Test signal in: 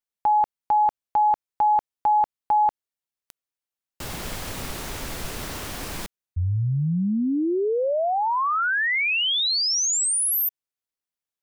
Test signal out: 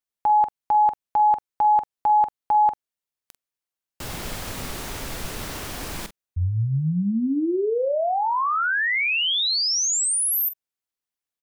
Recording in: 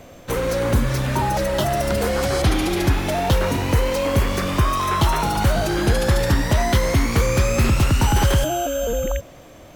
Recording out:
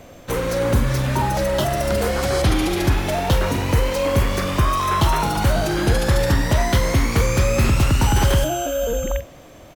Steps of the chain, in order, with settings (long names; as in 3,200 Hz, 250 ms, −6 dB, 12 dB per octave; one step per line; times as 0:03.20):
double-tracking delay 45 ms −12 dB